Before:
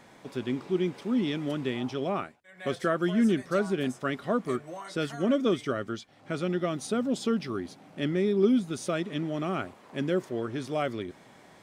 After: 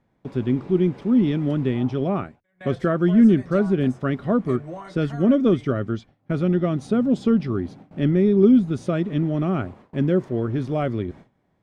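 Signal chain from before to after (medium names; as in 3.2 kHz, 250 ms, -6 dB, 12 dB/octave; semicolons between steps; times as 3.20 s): RIAA curve playback; gate with hold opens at -36 dBFS; trim +2.5 dB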